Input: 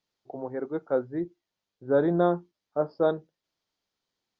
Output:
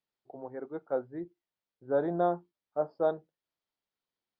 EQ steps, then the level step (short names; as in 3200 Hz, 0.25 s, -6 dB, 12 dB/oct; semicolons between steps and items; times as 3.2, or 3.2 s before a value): air absorption 160 m; low shelf 400 Hz -3.5 dB; dynamic EQ 720 Hz, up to +7 dB, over -40 dBFS, Q 2.1; -6.0 dB